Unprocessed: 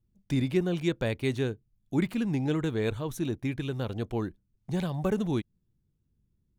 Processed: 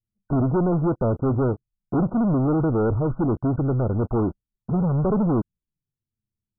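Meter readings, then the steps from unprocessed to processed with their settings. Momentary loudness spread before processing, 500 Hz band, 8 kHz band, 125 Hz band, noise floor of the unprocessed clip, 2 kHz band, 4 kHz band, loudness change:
6 LU, +7.0 dB, below −30 dB, +9.0 dB, −75 dBFS, −5.0 dB, below −40 dB, +7.5 dB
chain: flanger swept by the level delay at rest 9.6 ms, full sweep at −27 dBFS
leveller curve on the samples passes 5
linear-phase brick-wall low-pass 1,500 Hz
level −2.5 dB

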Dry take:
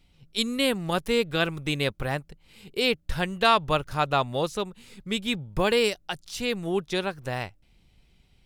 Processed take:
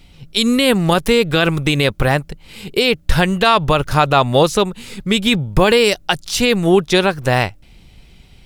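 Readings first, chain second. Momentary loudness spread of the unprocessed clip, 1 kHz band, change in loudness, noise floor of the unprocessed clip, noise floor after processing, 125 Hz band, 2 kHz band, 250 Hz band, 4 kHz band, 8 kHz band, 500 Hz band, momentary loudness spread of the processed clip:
11 LU, +10.0 dB, +11.5 dB, −62 dBFS, −46 dBFS, +14.0 dB, +10.5 dB, +13.0 dB, +10.5 dB, +12.5 dB, +11.5 dB, 7 LU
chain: boost into a limiter +17 dB
level −1 dB

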